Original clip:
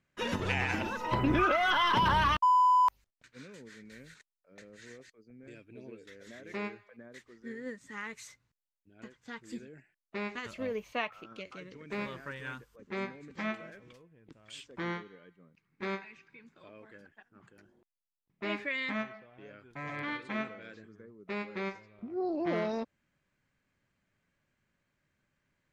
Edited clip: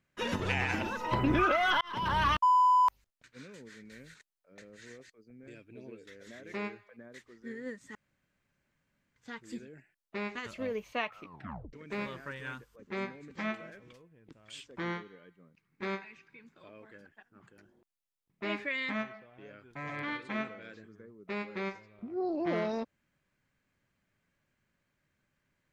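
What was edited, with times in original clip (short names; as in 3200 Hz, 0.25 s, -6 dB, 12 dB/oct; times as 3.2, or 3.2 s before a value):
1.81–2.28 fade in
7.95–9.16 room tone
11.19 tape stop 0.54 s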